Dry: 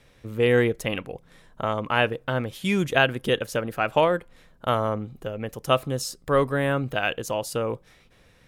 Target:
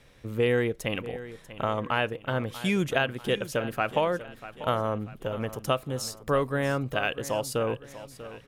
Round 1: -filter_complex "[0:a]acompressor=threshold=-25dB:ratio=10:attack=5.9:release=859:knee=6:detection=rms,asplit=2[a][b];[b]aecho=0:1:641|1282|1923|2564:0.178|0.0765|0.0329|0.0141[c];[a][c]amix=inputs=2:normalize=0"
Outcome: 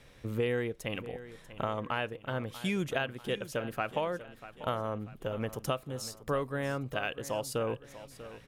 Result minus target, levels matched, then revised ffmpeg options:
compressor: peak gain reduction +7 dB
-filter_complex "[0:a]acompressor=threshold=-17dB:ratio=10:attack=5.9:release=859:knee=6:detection=rms,asplit=2[a][b];[b]aecho=0:1:641|1282|1923|2564:0.178|0.0765|0.0329|0.0141[c];[a][c]amix=inputs=2:normalize=0"

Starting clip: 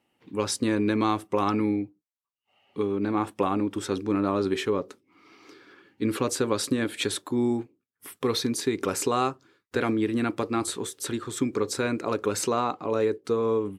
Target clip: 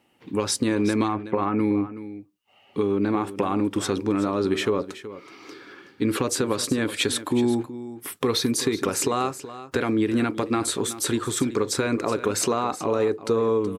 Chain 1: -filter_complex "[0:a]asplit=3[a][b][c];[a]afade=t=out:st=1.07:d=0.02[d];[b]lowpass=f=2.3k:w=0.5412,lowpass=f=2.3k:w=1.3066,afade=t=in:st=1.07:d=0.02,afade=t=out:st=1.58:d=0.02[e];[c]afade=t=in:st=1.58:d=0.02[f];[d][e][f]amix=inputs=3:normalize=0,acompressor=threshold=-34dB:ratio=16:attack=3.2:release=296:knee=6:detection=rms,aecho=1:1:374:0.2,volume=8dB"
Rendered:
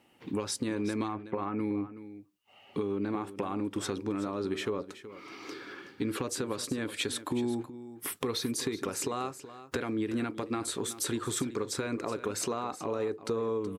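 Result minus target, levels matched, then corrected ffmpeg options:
compressor: peak gain reduction +10 dB
-filter_complex "[0:a]asplit=3[a][b][c];[a]afade=t=out:st=1.07:d=0.02[d];[b]lowpass=f=2.3k:w=0.5412,lowpass=f=2.3k:w=1.3066,afade=t=in:st=1.07:d=0.02,afade=t=out:st=1.58:d=0.02[e];[c]afade=t=in:st=1.58:d=0.02[f];[d][e][f]amix=inputs=3:normalize=0,acompressor=threshold=-23.5dB:ratio=16:attack=3.2:release=296:knee=6:detection=rms,aecho=1:1:374:0.2,volume=8dB"

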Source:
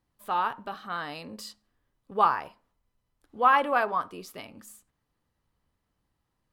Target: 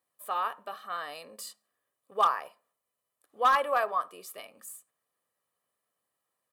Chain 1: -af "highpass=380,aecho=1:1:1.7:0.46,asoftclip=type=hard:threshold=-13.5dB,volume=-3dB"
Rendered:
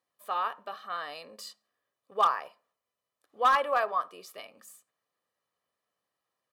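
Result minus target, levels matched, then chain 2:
8000 Hz band -5.5 dB
-af "highpass=380,highshelf=f=7k:t=q:w=1.5:g=7,aecho=1:1:1.7:0.46,asoftclip=type=hard:threshold=-13.5dB,volume=-3dB"

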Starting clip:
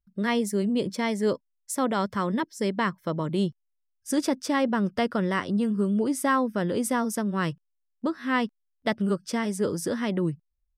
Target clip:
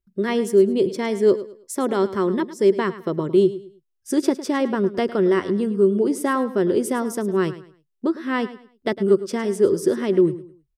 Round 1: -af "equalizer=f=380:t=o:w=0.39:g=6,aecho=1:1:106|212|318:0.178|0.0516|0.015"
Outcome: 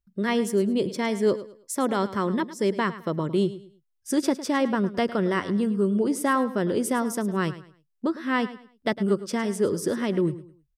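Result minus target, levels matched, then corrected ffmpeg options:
500 Hz band -2.5 dB
-af "equalizer=f=380:t=o:w=0.39:g=16.5,aecho=1:1:106|212|318:0.178|0.0516|0.015"

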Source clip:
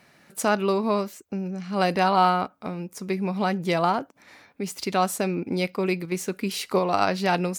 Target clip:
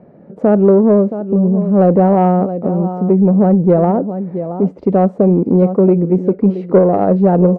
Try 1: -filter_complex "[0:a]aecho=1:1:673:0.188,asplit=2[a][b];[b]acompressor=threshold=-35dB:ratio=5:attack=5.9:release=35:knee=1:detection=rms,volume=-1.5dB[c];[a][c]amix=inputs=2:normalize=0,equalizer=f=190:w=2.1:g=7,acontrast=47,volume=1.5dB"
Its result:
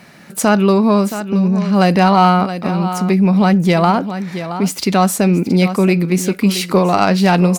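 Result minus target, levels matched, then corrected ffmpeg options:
500 Hz band -3.5 dB
-filter_complex "[0:a]aecho=1:1:673:0.188,asplit=2[a][b];[b]acompressor=threshold=-35dB:ratio=5:attack=5.9:release=35:knee=1:detection=rms,volume=-1.5dB[c];[a][c]amix=inputs=2:normalize=0,lowpass=f=510:t=q:w=2.4,equalizer=f=190:w=2.1:g=7,acontrast=47,volume=1.5dB"

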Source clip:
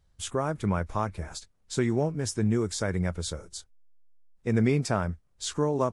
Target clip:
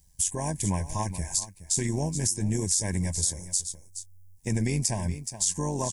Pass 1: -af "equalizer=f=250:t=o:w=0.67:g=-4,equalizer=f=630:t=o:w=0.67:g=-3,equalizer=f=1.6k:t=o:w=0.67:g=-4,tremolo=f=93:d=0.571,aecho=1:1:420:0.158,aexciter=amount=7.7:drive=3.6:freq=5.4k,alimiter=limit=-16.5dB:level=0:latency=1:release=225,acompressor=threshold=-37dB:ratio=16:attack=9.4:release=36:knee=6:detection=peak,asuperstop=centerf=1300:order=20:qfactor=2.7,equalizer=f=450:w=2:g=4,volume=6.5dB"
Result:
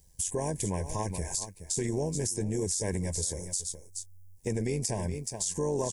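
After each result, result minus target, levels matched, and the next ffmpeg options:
500 Hz band +7.5 dB; compressor: peak gain reduction +7 dB
-af "equalizer=f=250:t=o:w=0.67:g=-4,equalizer=f=630:t=o:w=0.67:g=-3,equalizer=f=1.6k:t=o:w=0.67:g=-4,tremolo=f=93:d=0.571,aecho=1:1:420:0.158,aexciter=amount=7.7:drive=3.6:freq=5.4k,alimiter=limit=-16.5dB:level=0:latency=1:release=225,acompressor=threshold=-37dB:ratio=16:attack=9.4:release=36:knee=6:detection=peak,asuperstop=centerf=1300:order=20:qfactor=2.7,equalizer=f=450:w=2:g=-8,volume=6.5dB"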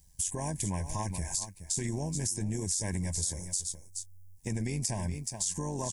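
compressor: peak gain reduction +7 dB
-af "equalizer=f=250:t=o:w=0.67:g=-4,equalizer=f=630:t=o:w=0.67:g=-3,equalizer=f=1.6k:t=o:w=0.67:g=-4,tremolo=f=93:d=0.571,aecho=1:1:420:0.158,aexciter=amount=7.7:drive=3.6:freq=5.4k,alimiter=limit=-16.5dB:level=0:latency=1:release=225,acompressor=threshold=-29dB:ratio=16:attack=9.4:release=36:knee=6:detection=peak,asuperstop=centerf=1300:order=20:qfactor=2.7,equalizer=f=450:w=2:g=-8,volume=6.5dB"

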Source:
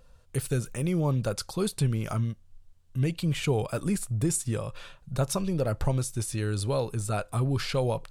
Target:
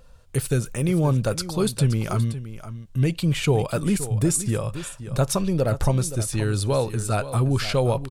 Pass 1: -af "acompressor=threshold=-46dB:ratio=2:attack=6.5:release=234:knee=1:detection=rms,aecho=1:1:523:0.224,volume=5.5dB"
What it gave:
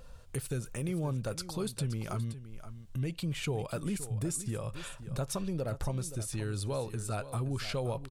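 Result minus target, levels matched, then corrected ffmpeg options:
compressor: peak gain reduction +14.5 dB
-af "aecho=1:1:523:0.224,volume=5.5dB"

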